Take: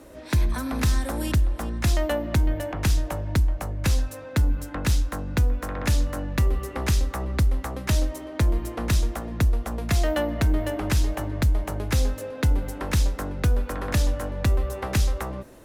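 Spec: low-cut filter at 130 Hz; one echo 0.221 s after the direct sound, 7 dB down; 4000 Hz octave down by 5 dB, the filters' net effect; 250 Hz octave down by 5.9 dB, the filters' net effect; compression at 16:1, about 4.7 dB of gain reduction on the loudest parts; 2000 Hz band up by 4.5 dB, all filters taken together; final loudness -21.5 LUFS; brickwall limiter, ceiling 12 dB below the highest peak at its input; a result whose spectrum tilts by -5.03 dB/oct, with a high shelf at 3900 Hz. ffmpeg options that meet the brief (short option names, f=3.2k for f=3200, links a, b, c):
-af "highpass=130,equalizer=f=250:t=o:g=-7.5,equalizer=f=2k:t=o:g=8,highshelf=f=3.9k:g=-3.5,equalizer=f=4k:t=o:g=-7,acompressor=threshold=-28dB:ratio=16,alimiter=level_in=0.5dB:limit=-24dB:level=0:latency=1,volume=-0.5dB,aecho=1:1:221:0.447,volume=14.5dB"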